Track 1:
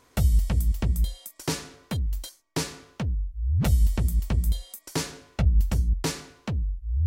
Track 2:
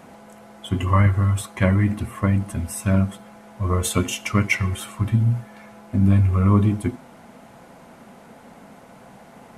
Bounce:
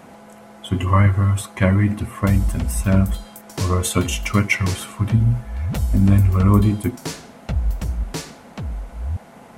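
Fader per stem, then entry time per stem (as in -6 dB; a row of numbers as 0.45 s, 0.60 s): -0.5 dB, +2.0 dB; 2.10 s, 0.00 s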